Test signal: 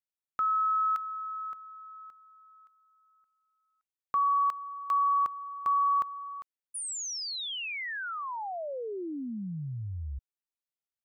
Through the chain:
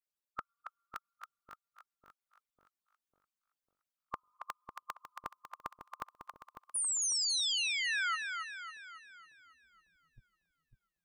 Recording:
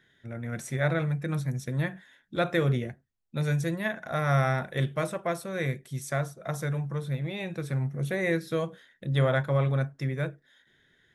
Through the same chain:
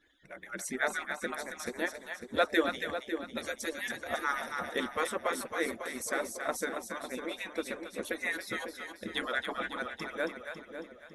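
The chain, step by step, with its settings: median-filter separation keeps percussive; dynamic EQ 2200 Hz, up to -3 dB, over -48 dBFS, Q 2.8; split-band echo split 640 Hz, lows 0.549 s, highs 0.275 s, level -6 dB; gain +2.5 dB

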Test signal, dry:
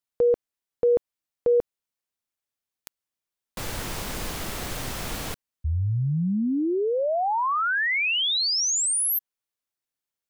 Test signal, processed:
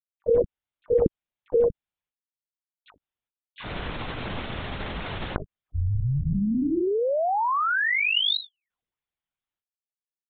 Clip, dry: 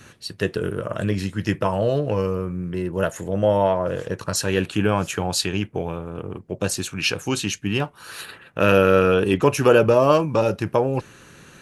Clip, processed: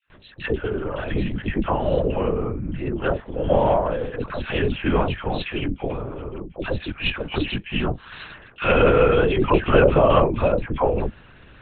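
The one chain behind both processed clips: dispersion lows, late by 99 ms, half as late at 910 Hz; gate with hold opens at -35 dBFS, closes at -40 dBFS, hold 0.375 s, range -24 dB; LPC vocoder at 8 kHz whisper

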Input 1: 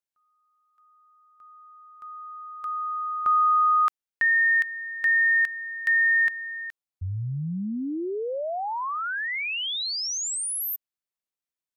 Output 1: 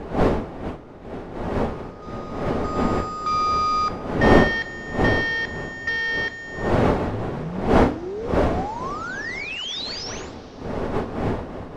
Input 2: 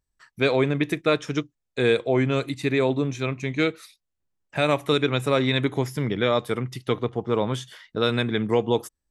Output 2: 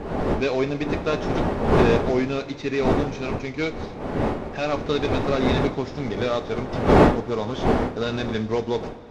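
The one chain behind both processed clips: CVSD 32 kbps; wind noise 530 Hz -23 dBFS; two-slope reverb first 0.31 s, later 4.8 s, from -21 dB, DRR 8 dB; gain -2 dB

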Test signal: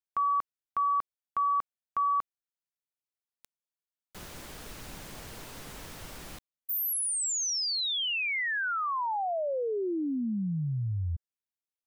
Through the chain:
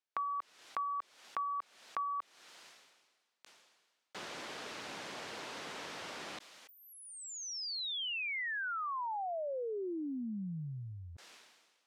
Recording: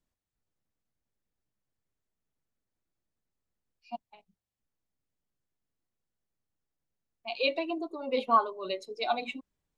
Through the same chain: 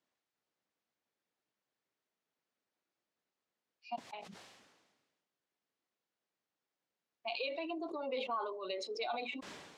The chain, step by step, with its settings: Bessel high-pass 390 Hz, order 2; compressor 6:1, threshold -42 dBFS; LPF 5000 Hz 12 dB/oct; sustainer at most 42 dB/s; gain +4.5 dB

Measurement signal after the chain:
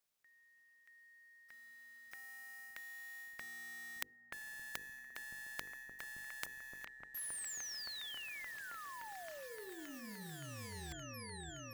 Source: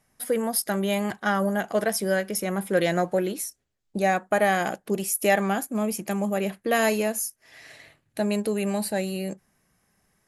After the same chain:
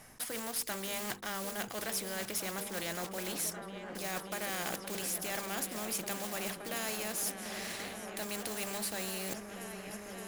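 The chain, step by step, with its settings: block floating point 5-bit; notches 50/100/150/200/250/300/350/400/450/500 Hz; reverse; compressor 6:1, threshold -33 dBFS; reverse; repeats that get brighter 0.57 s, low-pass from 200 Hz, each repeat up 1 oct, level -6 dB; spectral compressor 2:1

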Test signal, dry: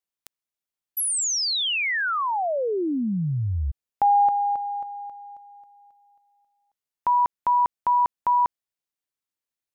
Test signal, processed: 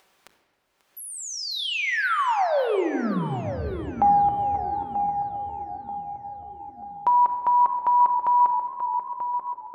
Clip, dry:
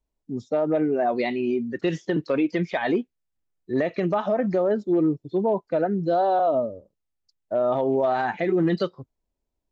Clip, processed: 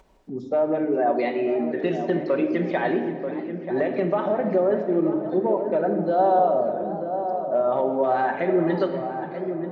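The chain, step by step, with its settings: notches 50/100/150/200/250/300/350/400 Hz; on a send: darkening echo 0.936 s, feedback 35%, low-pass 1000 Hz, level -9.5 dB; on the sum: upward compressor, threshold -35 dBFS; HPF 42 Hz; in parallel at -1 dB: compressor, threshold -29 dBFS; on the sum: LPF 1400 Hz 6 dB/oct; bell 100 Hz -10 dB 2.7 oct; shoebox room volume 2000 m³, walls mixed, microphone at 1.1 m; warbling echo 0.535 s, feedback 57%, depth 178 cents, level -16.5 dB

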